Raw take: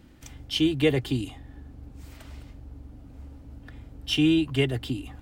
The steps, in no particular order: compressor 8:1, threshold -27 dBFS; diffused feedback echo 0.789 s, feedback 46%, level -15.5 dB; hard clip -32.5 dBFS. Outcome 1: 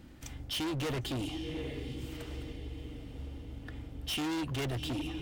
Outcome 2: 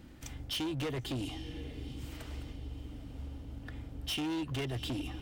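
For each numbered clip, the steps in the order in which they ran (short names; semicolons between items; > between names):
diffused feedback echo > hard clip > compressor; compressor > diffused feedback echo > hard clip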